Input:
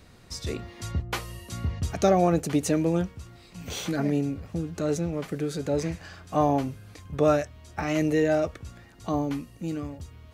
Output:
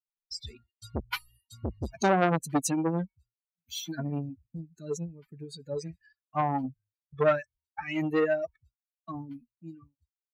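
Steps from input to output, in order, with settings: per-bin expansion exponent 3; expander -59 dBFS; core saturation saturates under 1100 Hz; gain +4.5 dB

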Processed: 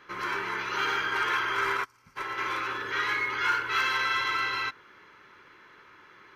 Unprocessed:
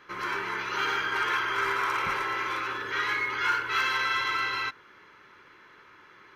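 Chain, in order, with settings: 1.84–2.16 spectral gain 300–4300 Hz -14 dB; 1.77–2.38 upward expander 2.5:1, over -41 dBFS

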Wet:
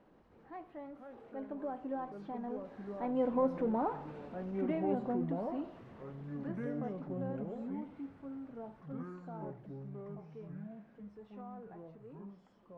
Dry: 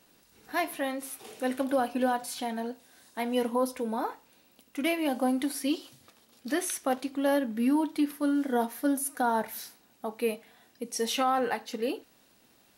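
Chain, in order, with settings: zero-crossing step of -35 dBFS; Doppler pass-by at 3.73, 19 m/s, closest 12 m; echoes that change speed 0.32 s, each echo -5 st, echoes 2, each echo -6 dB; LPF 1000 Hz 12 dB/oct; gain -2.5 dB

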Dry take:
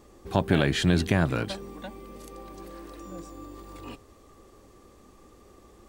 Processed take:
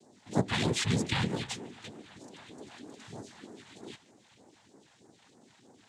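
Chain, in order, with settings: minimum comb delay 0.41 ms; HPF 260 Hz 6 dB/oct; noise vocoder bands 6; phaser stages 2, 3.2 Hz, lowest notch 330–2800 Hz; band-limited delay 0.145 s, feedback 56%, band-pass 1500 Hz, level -18.5 dB

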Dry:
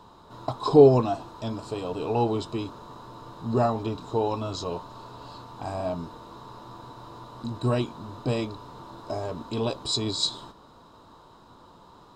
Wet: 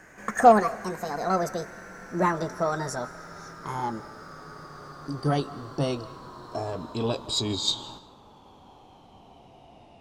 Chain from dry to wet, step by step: speed glide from 172% -> 71%; added harmonics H 8 -34 dB, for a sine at -4 dBFS; digital reverb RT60 0.75 s, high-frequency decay 0.95×, pre-delay 0.12 s, DRR 19 dB

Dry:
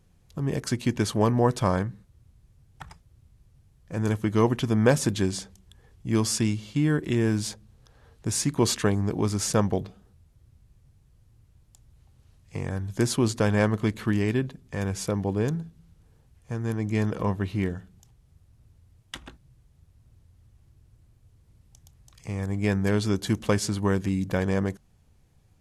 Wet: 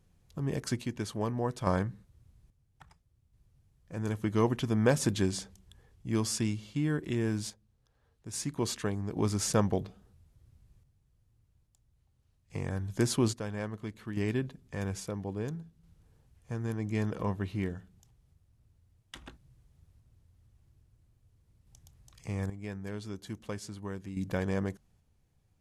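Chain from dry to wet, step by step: random-step tremolo 1.2 Hz, depth 75%; gain -3.5 dB

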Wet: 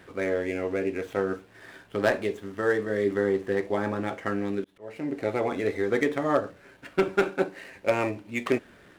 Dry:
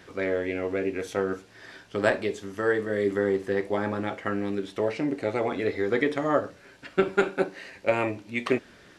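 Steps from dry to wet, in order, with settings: median filter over 9 samples; 4.64–5.17 auto swell 0.44 s; wavefolder -12 dBFS

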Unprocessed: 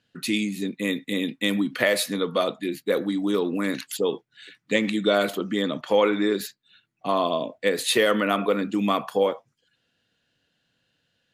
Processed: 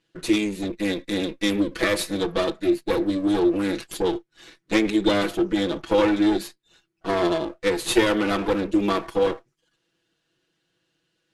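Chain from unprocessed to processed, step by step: minimum comb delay 6.1 ms; Chebyshev low-pass 12000 Hz, order 6; bell 350 Hz +13 dB 0.36 oct

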